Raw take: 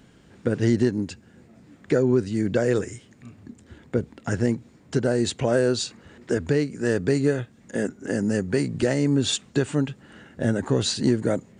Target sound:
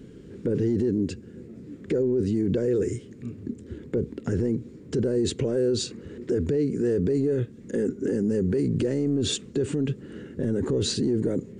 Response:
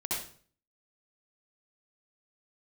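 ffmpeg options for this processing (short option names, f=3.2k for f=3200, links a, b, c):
-af "lowshelf=f=560:t=q:w=3:g=9,alimiter=limit=-15.5dB:level=0:latency=1:release=19,volume=-2dB"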